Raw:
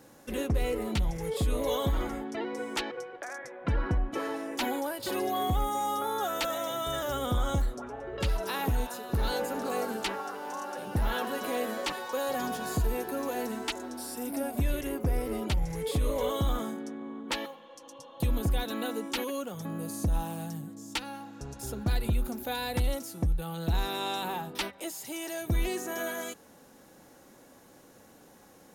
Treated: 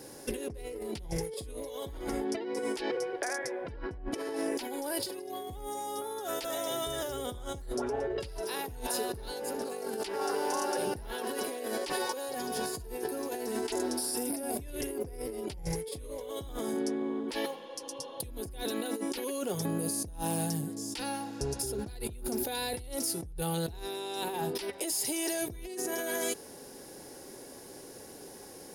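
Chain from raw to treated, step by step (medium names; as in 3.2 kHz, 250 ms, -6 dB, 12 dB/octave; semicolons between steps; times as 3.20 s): graphic EQ with 31 bands 200 Hz -5 dB, 400 Hz +10 dB, 1.25 kHz -7 dB, 5 kHz +10 dB, 10 kHz +12 dB; compressor with a negative ratio -36 dBFS, ratio -1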